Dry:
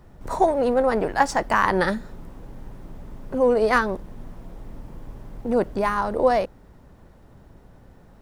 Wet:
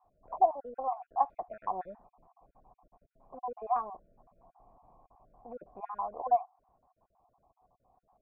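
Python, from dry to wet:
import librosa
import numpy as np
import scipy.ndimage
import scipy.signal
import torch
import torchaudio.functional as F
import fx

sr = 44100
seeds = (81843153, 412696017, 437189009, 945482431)

y = fx.spec_dropout(x, sr, seeds[0], share_pct=39)
y = fx.formant_cascade(y, sr, vowel='a')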